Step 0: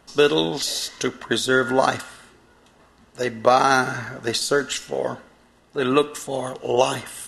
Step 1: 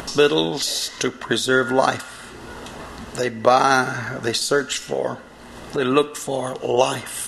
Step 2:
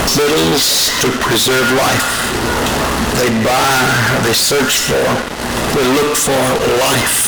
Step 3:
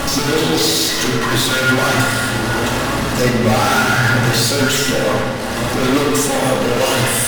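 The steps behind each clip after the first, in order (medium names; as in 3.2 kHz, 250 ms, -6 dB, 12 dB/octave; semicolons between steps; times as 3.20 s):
upward compressor, threshold -20 dBFS; trim +1 dB
fuzz box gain 39 dB, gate -44 dBFS; valve stage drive 14 dB, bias 0.65; trim +6 dB
flange 0.67 Hz, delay 6.9 ms, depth 3.2 ms, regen +51%; simulated room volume 1600 m³, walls mixed, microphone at 2.3 m; trim -3 dB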